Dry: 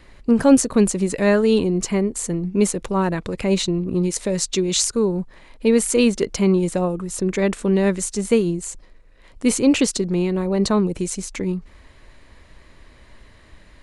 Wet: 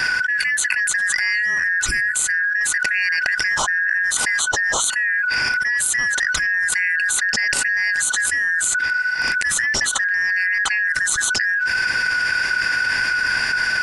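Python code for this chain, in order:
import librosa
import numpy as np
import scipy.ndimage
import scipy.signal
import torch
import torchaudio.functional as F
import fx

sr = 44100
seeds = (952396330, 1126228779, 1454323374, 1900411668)

y = fx.band_shuffle(x, sr, order='3142')
y = fx.spec_box(y, sr, start_s=1.87, length_s=0.27, low_hz=420.0, high_hz=7200.0, gain_db=-15)
y = fx.env_flatten(y, sr, amount_pct=100)
y = y * librosa.db_to_amplitude(-11.5)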